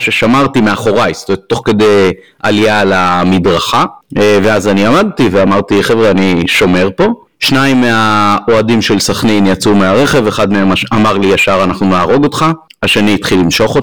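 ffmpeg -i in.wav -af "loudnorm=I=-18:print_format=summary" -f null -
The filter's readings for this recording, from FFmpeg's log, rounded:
Input Integrated:     -9.4 LUFS
Input True Peak:      -3.7 dBTP
Input LRA:             0.7 LU
Input Threshold:     -19.4 LUFS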